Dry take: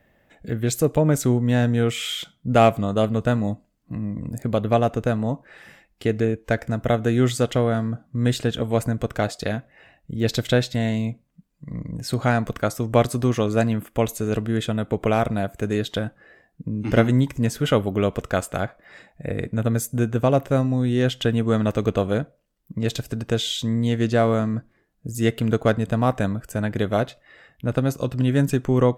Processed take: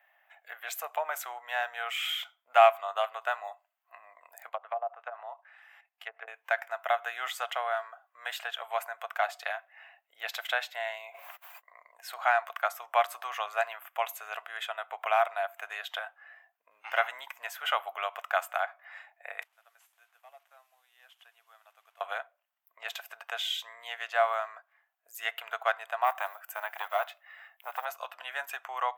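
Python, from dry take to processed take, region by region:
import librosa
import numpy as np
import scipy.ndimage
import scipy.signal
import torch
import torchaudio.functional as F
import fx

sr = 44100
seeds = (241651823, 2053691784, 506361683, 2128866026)

y = fx.chain(x, sr, fx.highpass(hz=320.0, slope=12),
    fx.level_steps(step_db=11),
    fx.env_lowpass_down(base_hz=590.0, full_db=-21.0), at=(4.49, 6.28))
y = fx.chain(y, sr, fx.peak_eq(hz=5100.0, db=-2.5, octaves=2.3),
    fx.sustainer(db_per_s=26.0), at=(10.67, 11.78))
y = fx.chain(y, sr, fx.delta_mod(bps=64000, step_db=-36.0),
    fx.high_shelf(hz=3400.0, db=11.0),
    fx.gate_flip(shuts_db=-23.0, range_db=-28), at=(19.42, 22.01))
y = fx.chain(y, sr, fx.block_float(bits=7),
    fx.high_shelf(hz=11000.0, db=9.0),
    fx.transformer_sat(knee_hz=670.0), at=(26.04, 27.86))
y = scipy.signal.sosfilt(scipy.signal.cheby1(5, 1.0, 700.0, 'highpass', fs=sr, output='sos'), y)
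y = fx.band_shelf(y, sr, hz=6400.0, db=-12.5, octaves=1.7)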